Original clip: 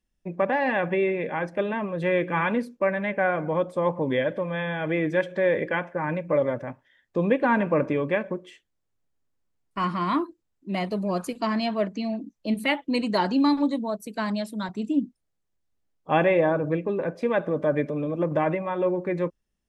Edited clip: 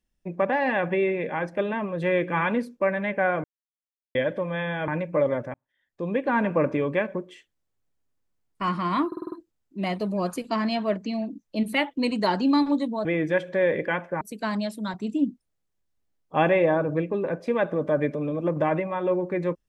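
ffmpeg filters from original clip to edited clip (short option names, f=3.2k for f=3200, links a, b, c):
-filter_complex "[0:a]asplit=12[a][b][c][d][e][f][g][h][i][j][k][l];[a]atrim=end=3.44,asetpts=PTS-STARTPTS,afade=t=out:st=3.436:d=0.004:c=hsin[m];[b]atrim=start=3.44:end=4.15,asetpts=PTS-STARTPTS,volume=0[n];[c]atrim=start=4.15:end=4.882,asetpts=PTS-STARTPTS,afade=t=in:d=0.004:c=hsin[o];[d]atrim=start=6.038:end=6.7,asetpts=PTS-STARTPTS,afade=t=out:st=0.658:d=0.004:c=hsin[p];[e]atrim=start=6.7:end=10.282,asetpts=PTS-STARTPTS,afade=t=in:d=0.99[q];[f]atrim=start=10.228:end=10.282[r];[g]atrim=start=10.228:end=10.282[s];[h]atrim=start=10.228:end=10.282[t];[i]atrim=start=10.228:end=10.282[u];[j]atrim=start=10.228:end=13.962[v];[k]atrim=start=4.878:end=6.042[w];[l]atrim=start=13.958[x];[m][n][o]concat=n=3:v=0:a=1[y];[p][q]concat=n=2:v=0:a=1[z];[y][z]acrossfade=d=0.004:c1=hsin:c2=hsin[aa];[aa][r]acrossfade=d=0.004:c1=hsin:c2=hsin[ab];[ab][s]acrossfade=d=0.004:c1=hsin:c2=hsin[ac];[ac][t]acrossfade=d=0.004:c1=hsin:c2=hsin[ad];[ad][u]acrossfade=d=0.004:c1=hsin:c2=hsin[ae];[ae][v]acrossfade=d=0.004:c1=hsin:c2=hsin[af];[af][w]acrossfade=d=0.004:c1=hsin:c2=hsin[ag];[ag][x]acrossfade=d=0.004:c1=hsin:c2=hsin"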